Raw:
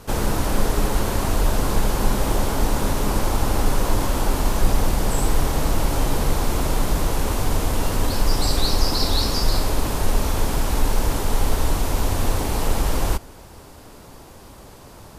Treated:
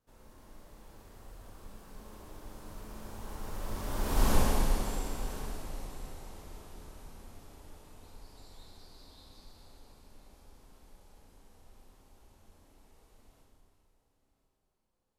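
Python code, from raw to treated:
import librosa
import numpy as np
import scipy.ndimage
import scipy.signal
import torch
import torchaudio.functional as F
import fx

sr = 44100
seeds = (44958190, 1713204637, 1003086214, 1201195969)

p1 = fx.doppler_pass(x, sr, speed_mps=22, closest_m=2.8, pass_at_s=4.28)
p2 = p1 + fx.echo_single(p1, sr, ms=1034, db=-16.5, dry=0)
p3 = fx.rev_schroeder(p2, sr, rt60_s=2.4, comb_ms=29, drr_db=-1.5)
y = p3 * librosa.db_to_amplitude(-7.0)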